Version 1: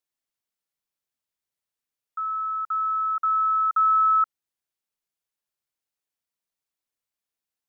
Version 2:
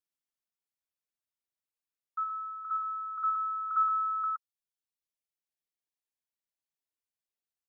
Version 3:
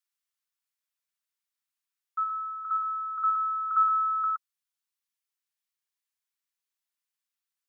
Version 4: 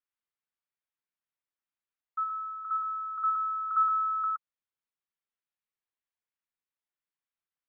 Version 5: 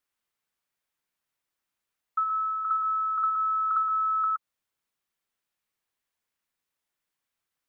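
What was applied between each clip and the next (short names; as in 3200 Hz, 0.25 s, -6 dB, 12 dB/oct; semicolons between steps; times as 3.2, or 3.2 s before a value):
reverb removal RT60 2 s; dynamic EQ 1200 Hz, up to +5 dB, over -38 dBFS; on a send: loudspeakers at several distances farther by 21 m -9 dB, 41 m -3 dB; on the sum: gain -7 dB
HPF 1000 Hz 24 dB/oct; gain +4.5 dB
air absorption 390 m
compressor 10:1, threshold -33 dBFS, peak gain reduction 11.5 dB; gain +9 dB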